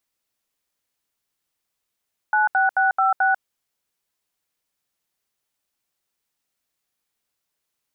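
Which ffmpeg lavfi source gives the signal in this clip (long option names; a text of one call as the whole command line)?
ffmpeg -f lavfi -i "aevalsrc='0.126*clip(min(mod(t,0.218),0.144-mod(t,0.218))/0.002,0,1)*(eq(floor(t/0.218),0)*(sin(2*PI*852*mod(t,0.218))+sin(2*PI*1477*mod(t,0.218)))+eq(floor(t/0.218),1)*(sin(2*PI*770*mod(t,0.218))+sin(2*PI*1477*mod(t,0.218)))+eq(floor(t/0.218),2)*(sin(2*PI*770*mod(t,0.218))+sin(2*PI*1477*mod(t,0.218)))+eq(floor(t/0.218),3)*(sin(2*PI*770*mod(t,0.218))+sin(2*PI*1336*mod(t,0.218)))+eq(floor(t/0.218),4)*(sin(2*PI*770*mod(t,0.218))+sin(2*PI*1477*mod(t,0.218))))':duration=1.09:sample_rate=44100" out.wav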